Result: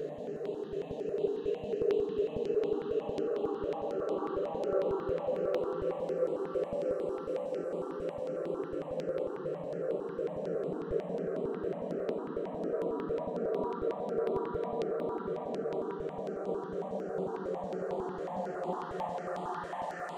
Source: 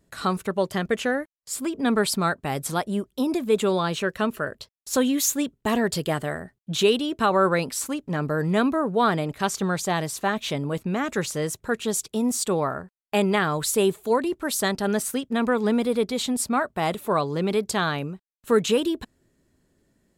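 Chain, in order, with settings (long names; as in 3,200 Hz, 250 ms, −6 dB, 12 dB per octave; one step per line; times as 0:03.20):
feedback delay with all-pass diffusion 531 ms, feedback 64%, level −5.5 dB
band-pass filter sweep 470 Hz → 6,000 Hz, 0:09.62–0:10.88
flanger 0.11 Hz, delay 5.1 ms, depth 2.8 ms, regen +61%
extreme stretch with random phases 5.7×, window 1.00 s, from 0:06.51
step-sequenced phaser 11 Hz 230–5,700 Hz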